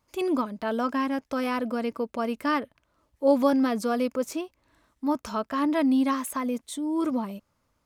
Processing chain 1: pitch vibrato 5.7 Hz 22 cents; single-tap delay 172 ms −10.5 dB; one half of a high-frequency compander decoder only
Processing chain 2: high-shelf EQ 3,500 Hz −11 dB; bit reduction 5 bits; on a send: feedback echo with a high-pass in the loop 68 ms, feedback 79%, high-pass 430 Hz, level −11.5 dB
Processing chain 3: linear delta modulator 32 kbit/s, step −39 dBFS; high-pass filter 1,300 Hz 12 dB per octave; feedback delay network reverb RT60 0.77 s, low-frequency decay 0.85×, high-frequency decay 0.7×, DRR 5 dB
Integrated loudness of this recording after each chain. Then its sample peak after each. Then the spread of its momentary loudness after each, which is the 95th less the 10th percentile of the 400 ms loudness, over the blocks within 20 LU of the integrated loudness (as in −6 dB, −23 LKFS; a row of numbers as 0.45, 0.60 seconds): −27.0, −26.0, −38.5 LKFS; −10.5, −10.5, −22.5 dBFS; 10, 9, 10 LU